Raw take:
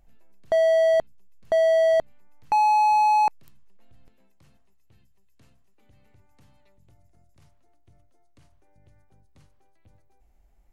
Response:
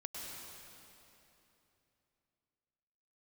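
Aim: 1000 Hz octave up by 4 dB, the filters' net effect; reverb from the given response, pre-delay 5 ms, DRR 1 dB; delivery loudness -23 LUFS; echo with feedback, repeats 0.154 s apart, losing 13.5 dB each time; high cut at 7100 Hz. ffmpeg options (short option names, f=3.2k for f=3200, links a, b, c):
-filter_complex "[0:a]lowpass=7.1k,equalizer=f=1k:t=o:g=5,aecho=1:1:154|308:0.211|0.0444,asplit=2[a][b];[1:a]atrim=start_sample=2205,adelay=5[c];[b][c]afir=irnorm=-1:irlink=0,volume=0dB[d];[a][d]amix=inputs=2:normalize=0,volume=-8.5dB"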